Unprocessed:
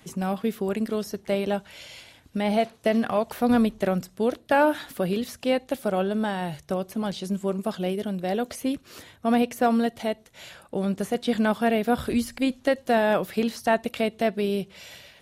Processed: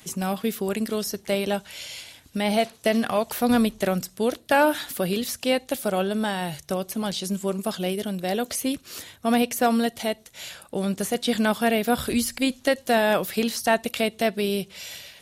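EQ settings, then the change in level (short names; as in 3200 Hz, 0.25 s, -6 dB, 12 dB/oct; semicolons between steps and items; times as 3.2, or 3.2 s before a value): high shelf 3000 Hz +11.5 dB; 0.0 dB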